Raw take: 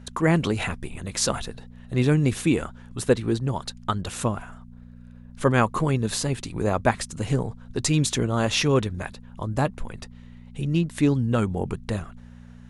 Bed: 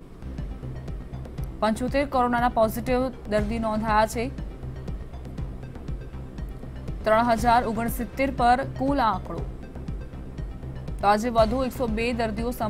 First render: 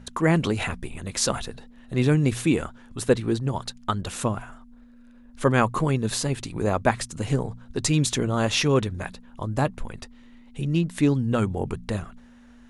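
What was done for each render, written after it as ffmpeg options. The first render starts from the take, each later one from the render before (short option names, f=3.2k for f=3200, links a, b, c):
-af "bandreject=f=60:t=h:w=4,bandreject=f=120:t=h:w=4,bandreject=f=180:t=h:w=4"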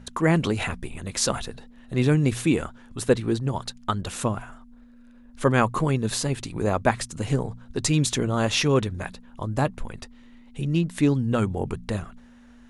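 -af anull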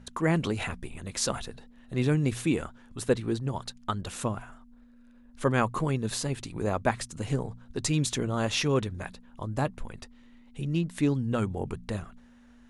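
-af "volume=-5dB"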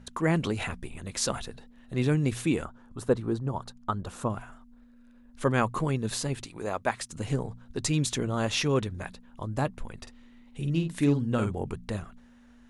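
-filter_complex "[0:a]asettb=1/sr,asplit=3[a][b][c];[a]atrim=end=2.654[d];[b]atrim=start=2.65:end=4.3,asetpts=PTS-STARTPTS,afade=t=in:d=0.004:c=qsin,afade=t=out:st=1.646:d=0.004:c=qsin,highshelf=f=1.6k:t=q:w=1.5:g=-7[e];[c]atrim=start=4.296[f];[d][e]acrossfade=d=0.004:c1=hsin:c2=qsin[g];[g][f]acrossfade=d=0.004:c1=qsin:c2=hsin,asettb=1/sr,asplit=3[h][i][j];[h]atrim=end=6.454[k];[i]atrim=start=6.45:end=7.1,asetpts=PTS-STARTPTS,afade=t=in:d=0.004:c=qsin,afade=t=out:st=0.646:d=0.004:c=qsin,lowshelf=f=270:g=-12[l];[j]atrim=start=7.096[m];[k][l]acrossfade=d=0.004:c1=hsin:c2=qsin[n];[n][m]acrossfade=d=0.004:c1=qsin:c2=hsin,asettb=1/sr,asplit=3[o][p][q];[o]atrim=end=9.974[r];[p]atrim=start=9.97:end=11.52,asetpts=PTS-STARTPTS,afade=t=in:d=0.004:c=qsin,afade=t=out:st=1.546:d=0.004:c=qsin,asplit=2[s][t];[t]adelay=49,volume=-6.5dB[u];[s][u]amix=inputs=2:normalize=0,atrim=end_sample=68355[v];[q]atrim=start=11.516[w];[r][v]acrossfade=d=0.004:c1=hsin:c2=qsin[x];[x][w]acrossfade=d=0.004:c1=qsin:c2=hsin"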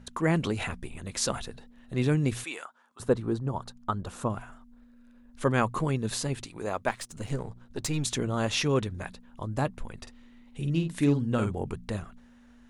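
-filter_complex "[0:a]asettb=1/sr,asplit=3[a][b][c];[a]atrim=end=2.444[d];[b]atrim=start=2.44:end=3,asetpts=PTS-STARTPTS,afade=t=in:d=0.004:c=qsin,afade=t=out:st=0.556:d=0.004:c=qsin,highpass=910[e];[c]atrim=start=2.996[f];[d][e]acrossfade=d=0.004:c1=hsin:c2=qsin[g];[g][f]acrossfade=d=0.004:c1=qsin:c2=hsin,asettb=1/sr,asplit=3[h][i][j];[h]atrim=end=6.884[k];[i]atrim=start=6.88:end=8.05,asetpts=PTS-STARTPTS,afade=t=in:d=0.004:c=qsin,afade=t=out:st=1.166:d=0.004:c=qsin,aeval=exprs='if(lt(val(0),0),0.447*val(0),val(0))':c=same[l];[j]atrim=start=8.046[m];[k][l]acrossfade=d=0.004:c1=hsin:c2=qsin[n];[n][m]acrossfade=d=0.004:c1=qsin:c2=hsin"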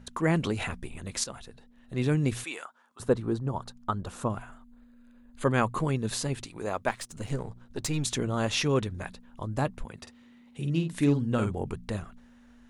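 -filter_complex "[0:a]asettb=1/sr,asplit=3[a][b][c];[a]atrim=end=4.384[d];[b]atrim=start=4.38:end=5.78,asetpts=PTS-STARTPTS,afade=t=in:d=0.004:c=qsin,afade=t=out:st=1.396:d=0.004:c=qsin,asuperstop=centerf=5500:order=4:qfactor=5.7[e];[c]atrim=start=5.776[f];[d][e]acrossfade=d=0.004:c1=hsin:c2=qsin[g];[g][f]acrossfade=d=0.004:c1=qsin:c2=hsin,asettb=1/sr,asplit=3[h][i][j];[h]atrim=end=9.844[k];[i]atrim=start=9.84:end=10.93,asetpts=PTS-STARTPTS,afade=t=in:d=0.004:c=qsin,afade=t=out:st=1.086:d=0.004:c=qsin,highpass=90[l];[j]atrim=start=10.926[m];[k][l]acrossfade=d=0.004:c1=hsin:c2=qsin[n];[n][m]acrossfade=d=0.004:c1=qsin:c2=hsin,asplit=2[o][p];[o]atrim=end=1.24,asetpts=PTS-STARTPTS,afade=t=out:st=1.236:d=0.004:c=hsin:silence=0.237137[q];[p]atrim=start=1.24,asetpts=PTS-STARTPTS,afade=t=in:d=0.98:silence=0.237137[r];[q][r]concat=n=2:v=0:a=1"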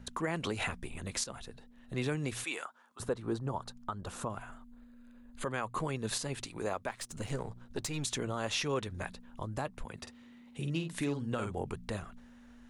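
-filter_complex "[0:a]acrossover=split=450[a][b];[a]acompressor=threshold=-39dB:ratio=2[c];[c][b]amix=inputs=2:normalize=0,alimiter=limit=-23dB:level=0:latency=1:release=206"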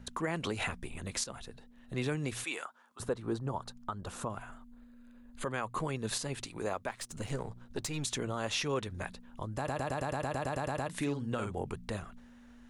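-filter_complex "[0:a]asplit=13[a][b][c][d][e][f][g][h][i][j][k][l][m];[a]atrim=end=9.682[n];[b]atrim=start=9.568:end=9.682[o];[c]atrim=start=9.568:end=9.682[p];[d]atrim=start=9.568:end=9.682[q];[e]atrim=start=9.568:end=9.682[r];[f]atrim=start=9.568:end=9.682[s];[g]atrim=start=9.568:end=9.682[t];[h]atrim=start=9.568:end=9.682[u];[i]atrim=start=9.568:end=9.682[v];[j]atrim=start=9.568:end=9.682[w];[k]atrim=start=9.568:end=9.682[x];[l]atrim=start=9.568:end=9.682[y];[m]atrim=start=10.888[z];[n][o]acrossfade=d=0.004:c1=hsin:c2=hsin[aa];[aa][p]acrossfade=d=0.004:c1=hsin:c2=hsin[ab];[ab][q]acrossfade=d=0.004:c1=hsin:c2=hsin[ac];[ac][r]acrossfade=d=0.004:c1=hsin:c2=hsin[ad];[ad][s]acrossfade=d=0.004:c1=hsin:c2=hsin[ae];[ae][t]acrossfade=d=0.004:c1=hsin:c2=hsin[af];[af][u]acrossfade=d=0.004:c1=hsin:c2=hsin[ag];[ag][v]acrossfade=d=0.004:c1=hsin:c2=hsin[ah];[ah][w]acrossfade=d=0.004:c1=hsin:c2=hsin[ai];[ai][x]acrossfade=d=0.004:c1=hsin:c2=hsin[aj];[aj][y]acrossfade=d=0.004:c1=hsin:c2=hsin[ak];[ak][z]acrossfade=d=0.004:c1=hsin:c2=hsin"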